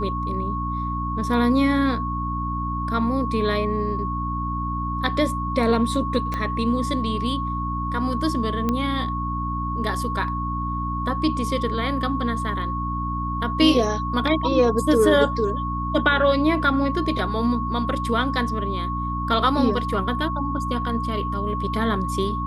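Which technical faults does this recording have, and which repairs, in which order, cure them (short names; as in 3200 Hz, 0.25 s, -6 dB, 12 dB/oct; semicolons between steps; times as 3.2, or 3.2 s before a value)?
hum 60 Hz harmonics 5 -28 dBFS
tone 1100 Hz -27 dBFS
6.34 pop -14 dBFS
8.69 pop -11 dBFS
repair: de-click; de-hum 60 Hz, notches 5; notch 1100 Hz, Q 30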